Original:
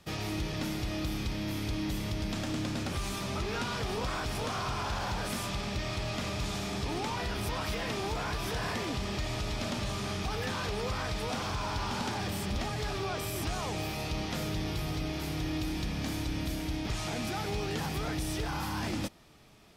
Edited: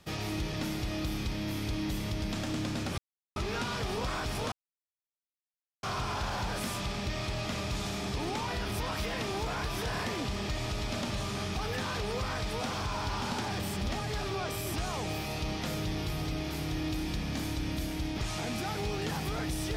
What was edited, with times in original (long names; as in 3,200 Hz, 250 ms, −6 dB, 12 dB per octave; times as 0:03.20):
0:02.98–0:03.36: silence
0:04.52: splice in silence 1.31 s